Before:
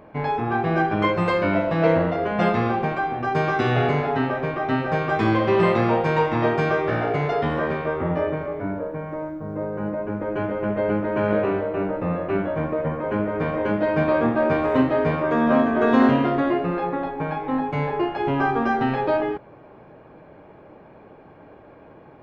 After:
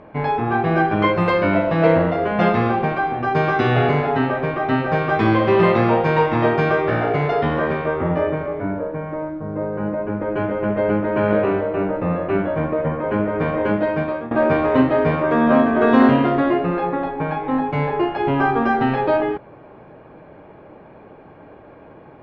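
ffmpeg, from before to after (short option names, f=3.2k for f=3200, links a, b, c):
-filter_complex "[0:a]asplit=2[a][b];[a]atrim=end=14.31,asetpts=PTS-STARTPTS,afade=t=out:st=13.73:d=0.58:silence=0.11885[c];[b]atrim=start=14.31,asetpts=PTS-STARTPTS,afade=t=in:d=0.004:c=hsin:silence=0.11885[d];[c][d]concat=n=2:v=0:a=1,lowpass=4.6k,volume=3.5dB"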